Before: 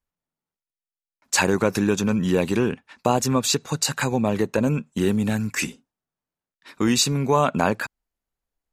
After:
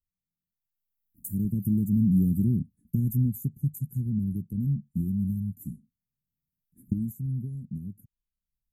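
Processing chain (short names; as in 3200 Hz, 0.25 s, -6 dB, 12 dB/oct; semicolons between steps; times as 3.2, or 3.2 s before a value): Doppler pass-by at 2.44, 24 m/s, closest 24 m; recorder AGC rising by 14 dB/s; inverse Chebyshev band-stop 610–5200 Hz, stop band 60 dB; gain +5 dB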